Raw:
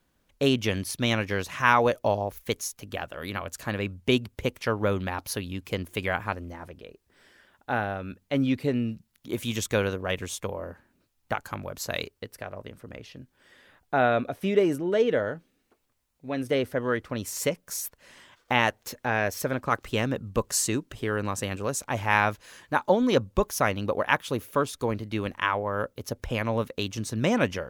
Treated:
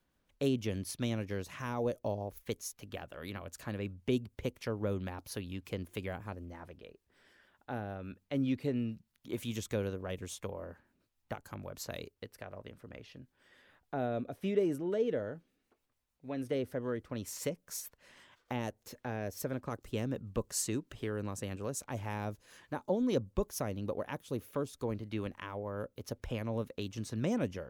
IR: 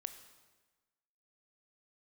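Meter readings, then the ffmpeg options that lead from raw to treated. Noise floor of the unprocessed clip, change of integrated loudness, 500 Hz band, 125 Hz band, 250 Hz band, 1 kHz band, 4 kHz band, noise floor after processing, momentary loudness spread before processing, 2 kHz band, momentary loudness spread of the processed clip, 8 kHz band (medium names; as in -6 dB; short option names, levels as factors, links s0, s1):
-72 dBFS, -10.0 dB, -9.5 dB, -7.0 dB, -7.0 dB, -16.0 dB, -13.5 dB, -79 dBFS, 13 LU, -18.0 dB, 13 LU, -9.5 dB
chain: -filter_complex "[0:a]acrossover=split=580|4800[s0][s1][s2];[s1]acompressor=threshold=0.0126:ratio=6[s3];[s2]tremolo=f=6.7:d=0.57[s4];[s0][s3][s4]amix=inputs=3:normalize=0,volume=0.447"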